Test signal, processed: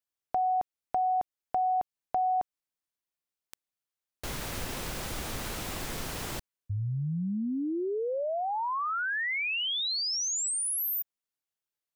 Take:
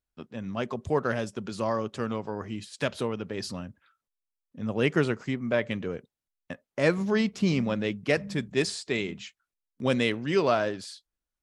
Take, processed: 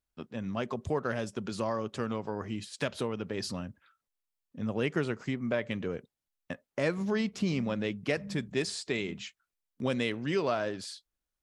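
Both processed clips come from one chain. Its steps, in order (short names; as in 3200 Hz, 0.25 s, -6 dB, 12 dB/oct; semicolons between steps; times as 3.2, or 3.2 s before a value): compressor 2:1, threshold -30 dBFS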